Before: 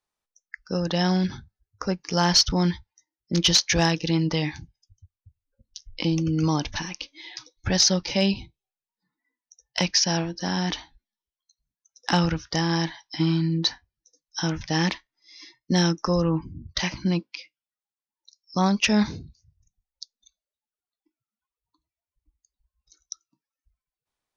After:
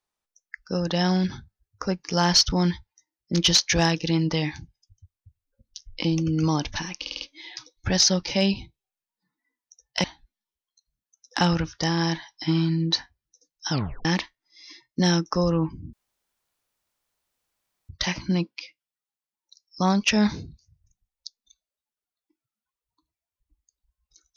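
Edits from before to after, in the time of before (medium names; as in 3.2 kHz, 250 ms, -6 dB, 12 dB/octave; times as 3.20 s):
7.01 s: stutter 0.05 s, 5 plays
9.84–10.76 s: delete
14.43 s: tape stop 0.34 s
16.65 s: insert room tone 1.96 s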